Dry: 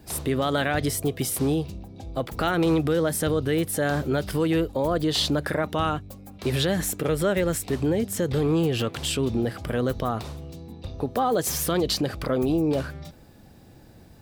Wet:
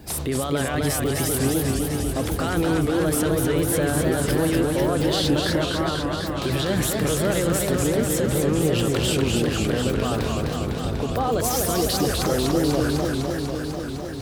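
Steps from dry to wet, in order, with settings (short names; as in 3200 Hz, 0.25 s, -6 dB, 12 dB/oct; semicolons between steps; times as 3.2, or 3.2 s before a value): limiter -23 dBFS, peak gain reduction 11.5 dB; 5.67–6.19 rippled Chebyshev low-pass 1500 Hz, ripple 3 dB; warbling echo 0.249 s, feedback 79%, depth 178 cents, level -3.5 dB; gain +6.5 dB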